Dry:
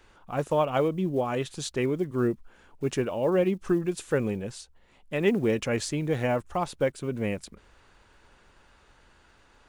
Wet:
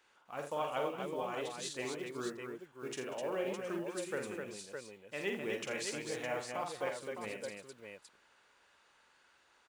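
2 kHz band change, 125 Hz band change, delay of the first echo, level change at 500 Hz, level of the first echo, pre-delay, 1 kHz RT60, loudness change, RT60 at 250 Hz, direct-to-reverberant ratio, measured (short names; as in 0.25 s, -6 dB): -6.0 dB, -20.5 dB, 47 ms, -11.5 dB, -5.0 dB, none, none, -11.5 dB, none, none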